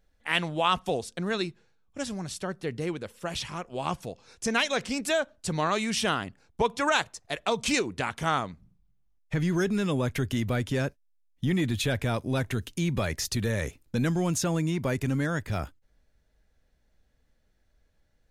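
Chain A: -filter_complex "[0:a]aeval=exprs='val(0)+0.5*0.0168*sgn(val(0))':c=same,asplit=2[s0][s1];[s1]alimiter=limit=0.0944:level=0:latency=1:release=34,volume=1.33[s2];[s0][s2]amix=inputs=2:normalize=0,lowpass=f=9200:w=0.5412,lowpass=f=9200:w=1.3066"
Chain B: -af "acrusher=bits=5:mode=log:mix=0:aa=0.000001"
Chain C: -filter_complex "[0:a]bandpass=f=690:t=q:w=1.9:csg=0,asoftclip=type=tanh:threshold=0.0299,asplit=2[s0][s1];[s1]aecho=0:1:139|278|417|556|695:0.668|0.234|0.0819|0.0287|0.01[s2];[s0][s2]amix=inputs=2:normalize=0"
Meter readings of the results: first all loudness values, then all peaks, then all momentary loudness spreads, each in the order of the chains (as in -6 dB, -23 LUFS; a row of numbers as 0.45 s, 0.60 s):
-22.0 LUFS, -29.0 LUFS, -39.0 LUFS; -7.5 dBFS, -10.0 dBFS, -26.0 dBFS; 18 LU, 8 LU, 8 LU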